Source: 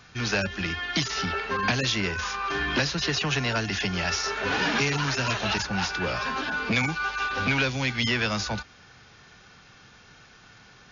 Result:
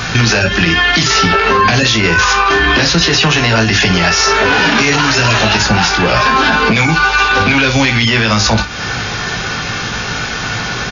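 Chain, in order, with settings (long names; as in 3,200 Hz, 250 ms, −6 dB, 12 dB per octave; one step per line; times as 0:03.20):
downward compressor 4 to 1, threshold −41 dBFS, peak gain reduction 17.5 dB
ambience of single reflections 18 ms −5 dB, 58 ms −11.5 dB
boost into a limiter +32.5 dB
level −1 dB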